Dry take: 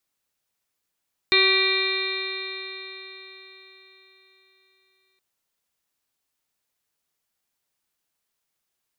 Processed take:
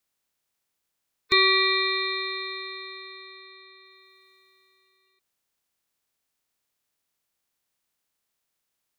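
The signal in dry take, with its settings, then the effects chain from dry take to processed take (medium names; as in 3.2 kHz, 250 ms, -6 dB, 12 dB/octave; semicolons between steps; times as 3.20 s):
stretched partials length 3.87 s, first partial 379 Hz, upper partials -17.5/-6/-13/-1.5/4/-12.5/-18/2/1 dB, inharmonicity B 0.002, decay 4.30 s, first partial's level -22.5 dB
coarse spectral quantiser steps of 30 dB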